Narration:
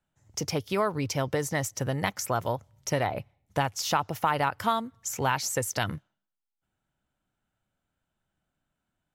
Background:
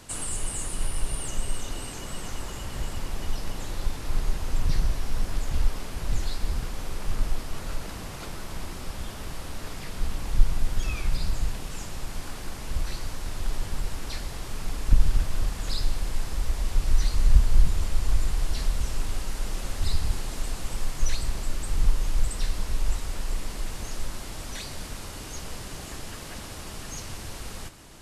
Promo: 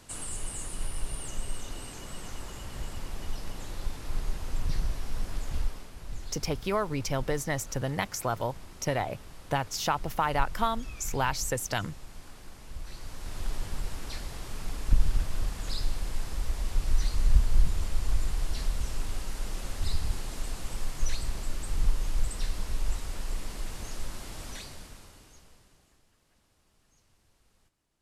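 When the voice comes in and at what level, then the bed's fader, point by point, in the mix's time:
5.95 s, −2.0 dB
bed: 0:05.58 −5.5 dB
0:05.92 −12 dB
0:12.79 −12 dB
0:13.39 −4 dB
0:24.50 −4 dB
0:26.09 −30.5 dB

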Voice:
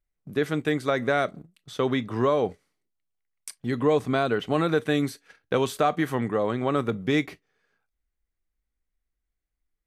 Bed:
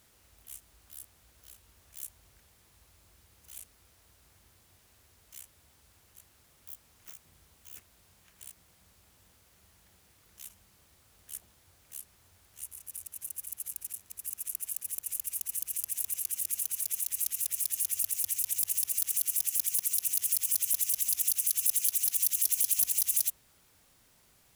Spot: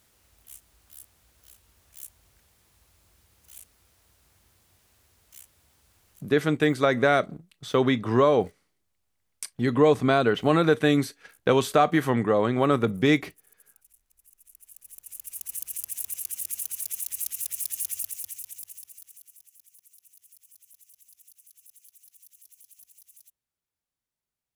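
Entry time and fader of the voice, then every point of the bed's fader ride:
5.95 s, +3.0 dB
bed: 0:06.15 −0.5 dB
0:06.46 −20 dB
0:14.39 −20 dB
0:15.51 0 dB
0:17.90 0 dB
0:19.55 −27 dB

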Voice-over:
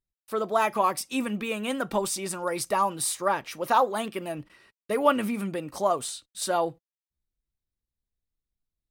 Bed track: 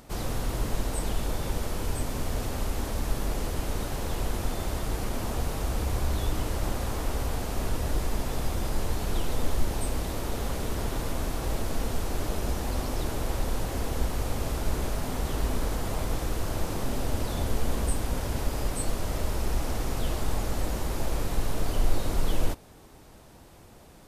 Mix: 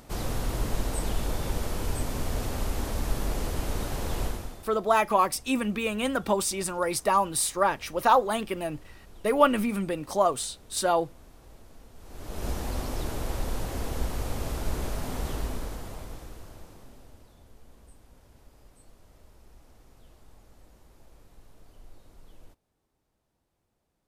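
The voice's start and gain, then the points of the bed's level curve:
4.35 s, +1.5 dB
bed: 0:04.25 0 dB
0:04.78 −22 dB
0:11.94 −22 dB
0:12.46 −2 dB
0:15.28 −2 dB
0:17.38 −26.5 dB

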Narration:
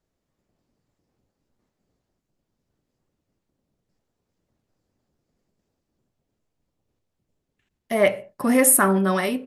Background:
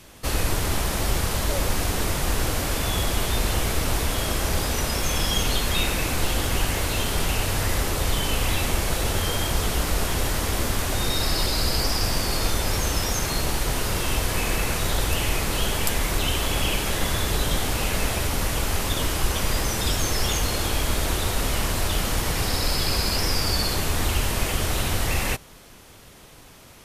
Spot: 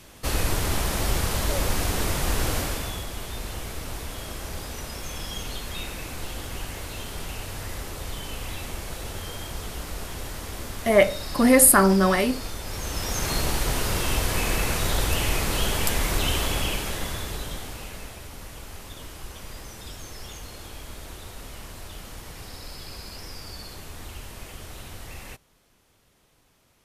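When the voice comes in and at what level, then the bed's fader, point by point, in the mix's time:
2.95 s, +1.5 dB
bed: 0:02.58 −1 dB
0:03.06 −10.5 dB
0:12.63 −10.5 dB
0:13.31 −0.5 dB
0:16.38 −0.5 dB
0:18.17 −16 dB

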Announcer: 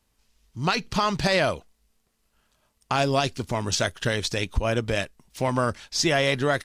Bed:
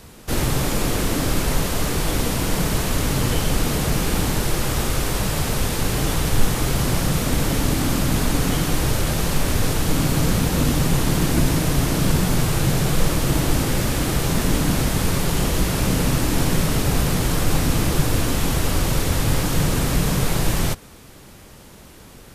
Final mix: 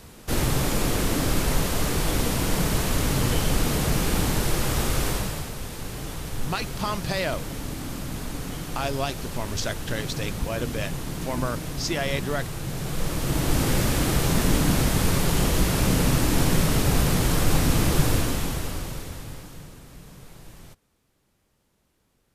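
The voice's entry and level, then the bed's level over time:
5.85 s, −5.5 dB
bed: 0:05.09 −2.5 dB
0:05.53 −12.5 dB
0:12.64 −12.5 dB
0:13.68 −1.5 dB
0:18.10 −1.5 dB
0:19.81 −25.5 dB

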